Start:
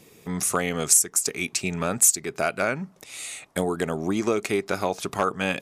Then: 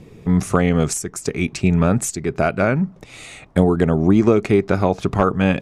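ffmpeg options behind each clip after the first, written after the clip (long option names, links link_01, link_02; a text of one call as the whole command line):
ffmpeg -i in.wav -af "aemphasis=mode=reproduction:type=riaa,volume=5dB" out.wav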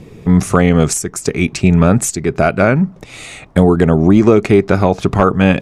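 ffmpeg -i in.wav -af "apsyclip=7.5dB,volume=-1.5dB" out.wav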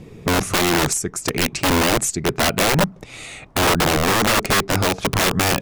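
ffmpeg -i in.wav -af "aeval=exprs='(mod(2.51*val(0)+1,2)-1)/2.51':channel_layout=same,volume=-3.5dB" out.wav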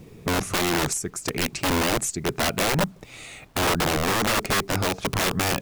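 ffmpeg -i in.wav -af "acrusher=bits=8:mix=0:aa=0.000001,volume=-5.5dB" out.wav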